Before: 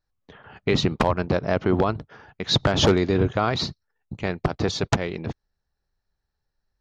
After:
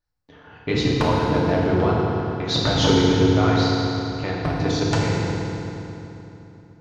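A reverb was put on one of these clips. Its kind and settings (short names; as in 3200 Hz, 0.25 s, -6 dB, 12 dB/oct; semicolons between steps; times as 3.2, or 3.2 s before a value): FDN reverb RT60 3.2 s, low-frequency decay 1.2×, high-frequency decay 0.8×, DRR -5.5 dB; gain -4.5 dB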